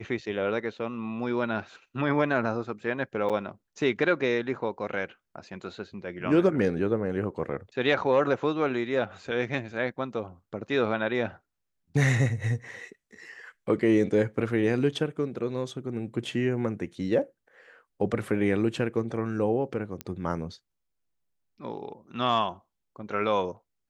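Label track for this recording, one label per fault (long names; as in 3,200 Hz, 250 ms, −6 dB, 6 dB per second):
3.290000	3.300000	drop-out 6.9 ms
20.010000	20.010000	click −17 dBFS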